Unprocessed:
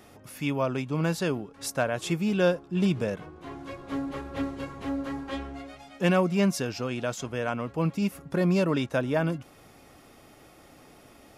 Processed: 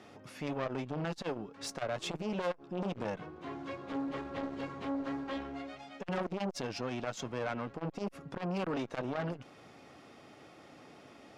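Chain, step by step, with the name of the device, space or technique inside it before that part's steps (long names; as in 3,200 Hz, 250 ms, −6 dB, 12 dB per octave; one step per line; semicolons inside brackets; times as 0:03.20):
valve radio (band-pass filter 120–5,400 Hz; tube saturation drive 26 dB, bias 0.35; saturating transformer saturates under 530 Hz)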